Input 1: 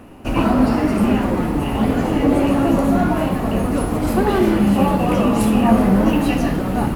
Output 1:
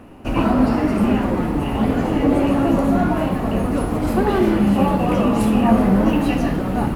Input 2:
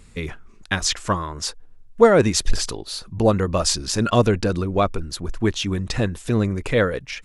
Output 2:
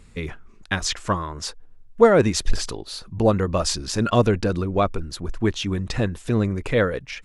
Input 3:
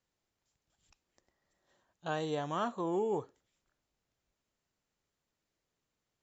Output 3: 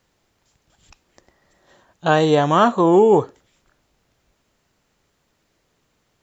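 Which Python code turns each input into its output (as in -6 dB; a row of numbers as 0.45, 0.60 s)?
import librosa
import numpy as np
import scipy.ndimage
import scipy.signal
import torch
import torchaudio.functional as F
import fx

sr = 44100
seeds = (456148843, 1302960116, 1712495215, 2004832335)

y = fx.high_shelf(x, sr, hz=4600.0, db=-5.0)
y = librosa.util.normalize(y) * 10.0 ** (-2 / 20.0)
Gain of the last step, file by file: -1.0, -1.0, +19.5 dB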